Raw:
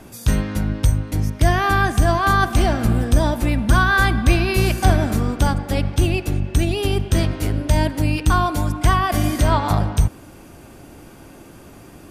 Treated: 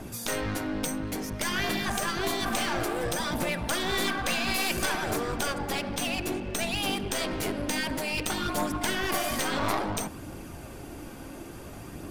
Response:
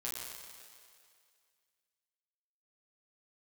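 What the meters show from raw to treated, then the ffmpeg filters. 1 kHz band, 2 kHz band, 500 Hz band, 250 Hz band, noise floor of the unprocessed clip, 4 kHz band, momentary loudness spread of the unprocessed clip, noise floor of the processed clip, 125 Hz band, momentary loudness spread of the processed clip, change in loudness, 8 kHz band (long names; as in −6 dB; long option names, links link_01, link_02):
−10.5 dB, −8.0 dB, −8.0 dB, −10.0 dB, −43 dBFS, −2.0 dB, 5 LU, −42 dBFS, −20.0 dB, 15 LU, −10.0 dB, −1.5 dB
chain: -af "afftfilt=real='re*lt(hypot(re,im),0.398)':imag='im*lt(hypot(re,im),0.398)':win_size=1024:overlap=0.75,aeval=exprs='clip(val(0),-1,0.0266)':channel_layout=same,aphaser=in_gain=1:out_gain=1:delay=4.1:decay=0.25:speed=0.58:type=triangular"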